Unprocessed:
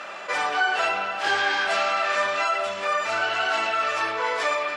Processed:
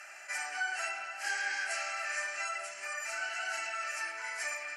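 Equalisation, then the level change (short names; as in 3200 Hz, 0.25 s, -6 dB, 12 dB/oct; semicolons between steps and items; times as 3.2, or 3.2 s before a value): differentiator; fixed phaser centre 720 Hz, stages 8; +3.5 dB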